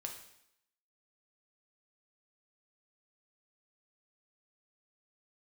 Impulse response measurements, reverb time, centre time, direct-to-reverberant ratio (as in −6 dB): 0.75 s, 24 ms, 2.0 dB